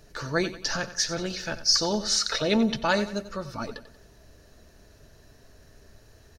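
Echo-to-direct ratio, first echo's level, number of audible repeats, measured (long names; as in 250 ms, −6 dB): −13.0 dB, −14.0 dB, 3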